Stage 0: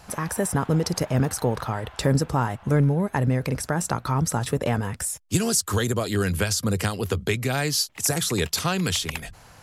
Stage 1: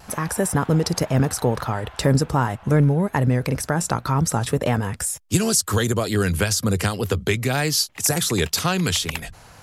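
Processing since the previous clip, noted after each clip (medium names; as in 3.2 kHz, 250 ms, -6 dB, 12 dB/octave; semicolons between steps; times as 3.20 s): wow and flutter 45 cents; trim +3 dB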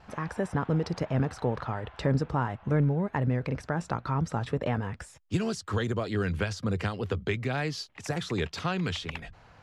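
low-pass 3.2 kHz 12 dB/octave; trim -8 dB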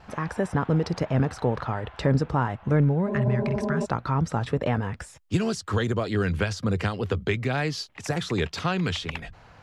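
spectral replace 3.11–3.82 s, 210–1100 Hz before; trim +4 dB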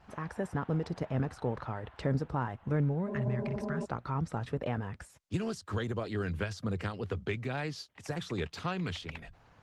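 trim -8.5 dB; Opus 20 kbps 48 kHz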